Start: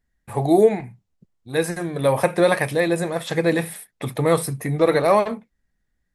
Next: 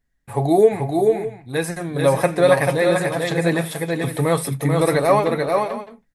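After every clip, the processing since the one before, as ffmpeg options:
-af "aecho=1:1:7.2:0.33,aecho=1:1:438|456|610:0.631|0.112|0.188"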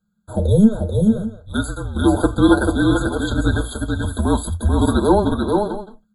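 -af "afreqshift=-220,afftfilt=real='re*eq(mod(floor(b*sr/1024/1600),2),0)':imag='im*eq(mod(floor(b*sr/1024/1600),2),0)':win_size=1024:overlap=0.75,volume=1.19"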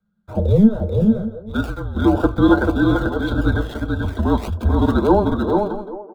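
-filter_complex "[0:a]acrossover=split=270|1100|3800[s0][s1][s2][s3];[s1]aecho=1:1:384:0.282[s4];[s3]acrusher=samples=30:mix=1:aa=0.000001:lfo=1:lforange=18:lforate=1.7[s5];[s0][s4][s2][s5]amix=inputs=4:normalize=0"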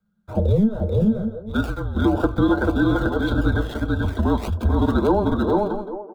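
-af "acompressor=threshold=0.2:ratio=6"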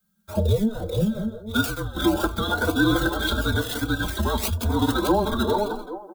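-filter_complex "[0:a]crystalizer=i=9:c=0,asplit=2[s0][s1];[s1]adelay=3.4,afreqshift=0.99[s2];[s0][s2]amix=inputs=2:normalize=1,volume=0.841"

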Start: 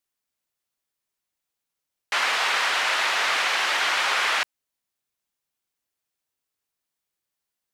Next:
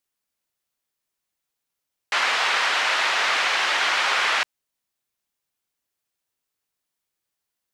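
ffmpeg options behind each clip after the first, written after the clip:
-filter_complex "[0:a]acrossover=split=8600[s0][s1];[s1]acompressor=threshold=0.00178:ratio=4:attack=1:release=60[s2];[s0][s2]amix=inputs=2:normalize=0,volume=1.19"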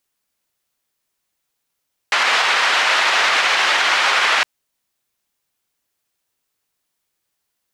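-af "alimiter=level_in=4.22:limit=0.891:release=50:level=0:latency=1,volume=0.531"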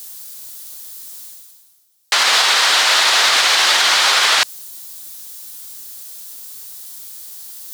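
-af "areverse,acompressor=mode=upward:threshold=0.0447:ratio=2.5,areverse,aexciter=amount=2:drive=9.3:freq=3500"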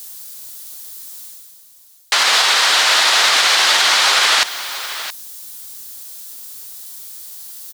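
-af "aecho=1:1:672:0.224"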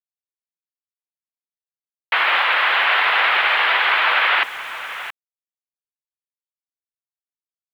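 -af "highpass=f=160:t=q:w=0.5412,highpass=f=160:t=q:w=1.307,lowpass=f=2800:t=q:w=0.5176,lowpass=f=2800:t=q:w=0.7071,lowpass=f=2800:t=q:w=1.932,afreqshift=89,aeval=exprs='val(0)*gte(abs(val(0)),0.0119)':c=same"

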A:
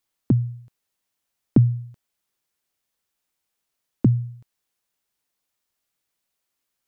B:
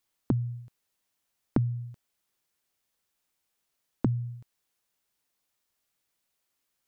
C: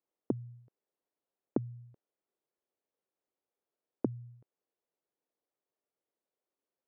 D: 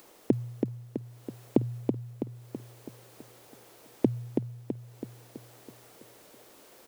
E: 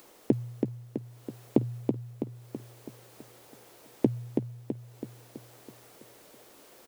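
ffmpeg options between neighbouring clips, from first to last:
-af "acompressor=threshold=0.0562:ratio=4"
-af "bandpass=f=440:t=q:w=1.7:csg=0,volume=1.19"
-filter_complex "[0:a]acompressor=mode=upward:threshold=0.00794:ratio=2.5,asplit=2[s0][s1];[s1]aecho=0:1:328|656|984|1312|1640|1968|2296:0.596|0.316|0.167|0.0887|0.047|0.0249|0.0132[s2];[s0][s2]amix=inputs=2:normalize=0,volume=2.51"
-filter_complex "[0:a]asplit=2[s0][s1];[s1]adelay=14,volume=0.2[s2];[s0][s2]amix=inputs=2:normalize=0"

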